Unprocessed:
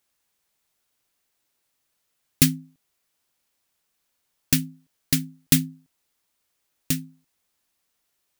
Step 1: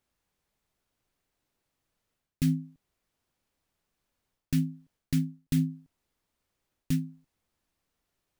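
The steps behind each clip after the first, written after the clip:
reversed playback
downward compressor 12 to 1, threshold −25 dBFS, peak gain reduction 15 dB
reversed playback
spectral tilt −2.5 dB per octave
level −2 dB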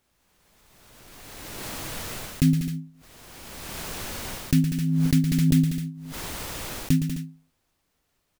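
on a send: loudspeakers that aren't time-aligned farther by 39 metres −8 dB, 66 metres −8 dB, 89 metres −11 dB
on the sum: background raised ahead of every attack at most 23 dB per second
level +6 dB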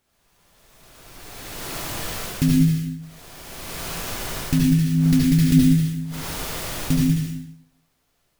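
convolution reverb RT60 0.75 s, pre-delay 62 ms, DRR −3 dB

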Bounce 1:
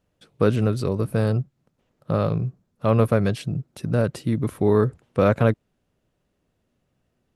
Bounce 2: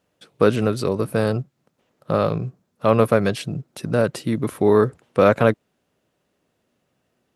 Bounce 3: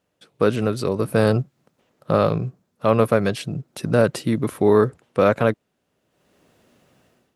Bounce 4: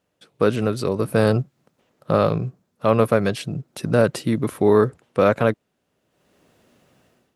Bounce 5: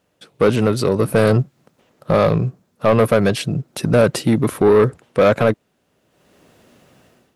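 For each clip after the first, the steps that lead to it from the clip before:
high-pass filter 290 Hz 6 dB per octave; level +5.5 dB
automatic gain control gain up to 15 dB; level −3 dB
no processing that can be heard
soft clipping −13.5 dBFS, distortion −11 dB; level +7 dB

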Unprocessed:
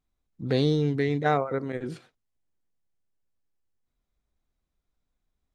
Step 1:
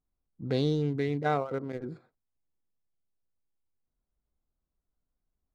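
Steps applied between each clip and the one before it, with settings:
adaptive Wiener filter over 15 samples
notch filter 1,800 Hz, Q 12
level −4 dB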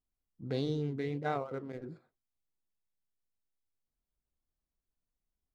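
flanger 1.5 Hz, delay 3.1 ms, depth 8.1 ms, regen −77%
level −1.5 dB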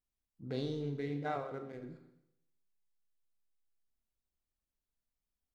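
four-comb reverb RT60 0.81 s, combs from 28 ms, DRR 6.5 dB
level −4 dB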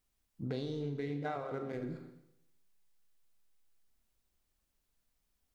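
downward compressor, threshold −45 dBFS, peak gain reduction 12.5 dB
level +10 dB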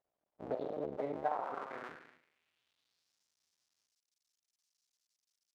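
sub-harmonics by changed cycles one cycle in 2, muted
band-pass filter sweep 640 Hz → 5,500 Hz, 0:01.11–0:03.16
level +10 dB

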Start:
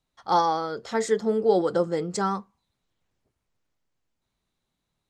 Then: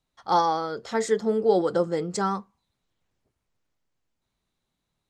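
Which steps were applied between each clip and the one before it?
no processing that can be heard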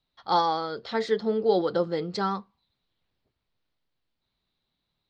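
high shelf with overshoot 5,700 Hz −12 dB, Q 3
level −2 dB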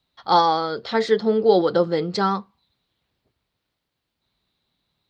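high-pass filter 43 Hz
level +6.5 dB

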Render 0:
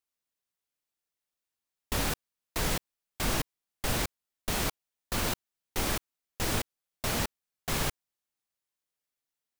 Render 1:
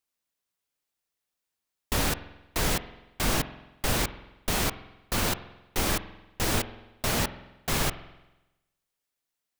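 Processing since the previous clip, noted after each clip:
spring reverb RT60 1 s, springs 46 ms, chirp 80 ms, DRR 13 dB
level +3.5 dB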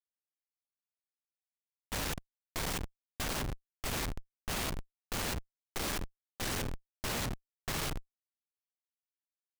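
comparator with hysteresis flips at −36 dBFS
level −3 dB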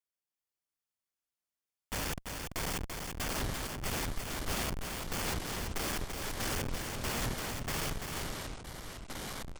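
notch filter 3,900 Hz, Q 8.4
single-tap delay 338 ms −5 dB
delay with pitch and tempo change per echo 470 ms, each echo −7 semitones, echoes 2, each echo −6 dB

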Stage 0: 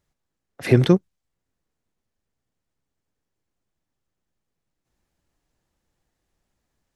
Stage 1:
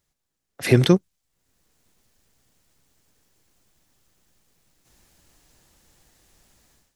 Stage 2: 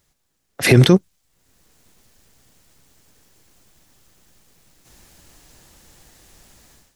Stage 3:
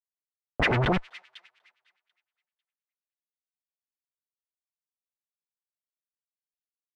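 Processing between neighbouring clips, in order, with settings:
high-shelf EQ 3,000 Hz +9.5 dB; automatic gain control gain up to 16 dB; level −2.5 dB
boost into a limiter +10.5 dB; level −1 dB
comparator with hysteresis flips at −25 dBFS; delay with a high-pass on its return 247 ms, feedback 41%, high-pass 3,300 Hz, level −7.5 dB; auto-filter low-pass sine 9.7 Hz 650–2,800 Hz

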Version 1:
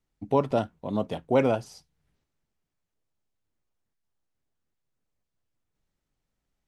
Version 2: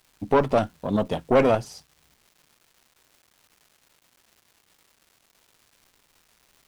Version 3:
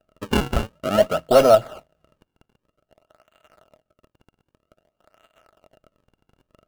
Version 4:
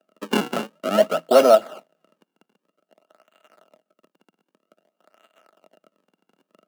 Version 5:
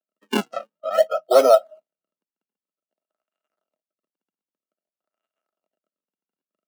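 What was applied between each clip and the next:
tube saturation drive 19 dB, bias 0.65; surface crackle 570 per second −56 dBFS; level +9 dB
sample-and-hold swept by an LFO 40×, swing 160% 0.52 Hz; hollow resonant body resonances 630/1,300/2,800 Hz, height 16 dB, ringing for 35 ms; level −2 dB
Butterworth high-pass 180 Hz 48 dB per octave
noise reduction from a noise print of the clip's start 27 dB

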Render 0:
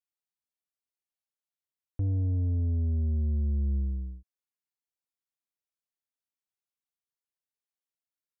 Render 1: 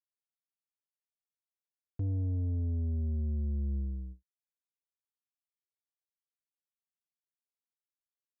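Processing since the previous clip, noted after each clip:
noise gate with hold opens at −31 dBFS
low-shelf EQ 65 Hz −5.5 dB
level −2.5 dB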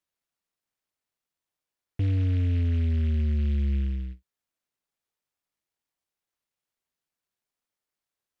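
short delay modulated by noise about 2,200 Hz, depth 0.057 ms
level +7.5 dB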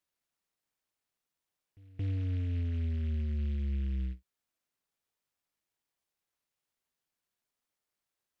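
brickwall limiter −29 dBFS, peak gain reduction 8.5 dB
backwards echo 224 ms −23 dB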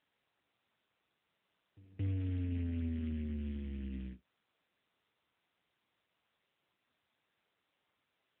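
AMR narrowband 10.2 kbit/s 8,000 Hz

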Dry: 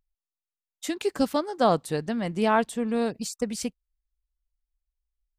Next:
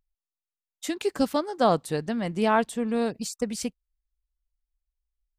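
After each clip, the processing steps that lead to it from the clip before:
no processing that can be heard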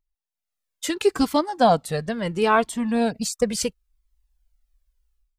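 automatic gain control gain up to 15.5 dB
flanger whose copies keep moving one way falling 0.73 Hz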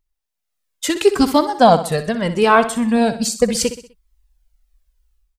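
repeating echo 63 ms, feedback 44%, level −12 dB
level +6 dB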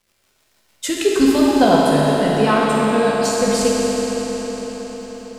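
surface crackle 540 per second −45 dBFS
rotating-speaker cabinet horn 6.7 Hz
convolution reverb RT60 5.5 s, pre-delay 11 ms, DRR −4.5 dB
level −2.5 dB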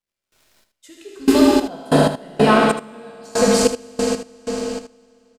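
gate pattern "..xx....xx..x" 94 BPM −24 dB
on a send: single-tap delay 78 ms −10.5 dB
on the sum: level +2 dB

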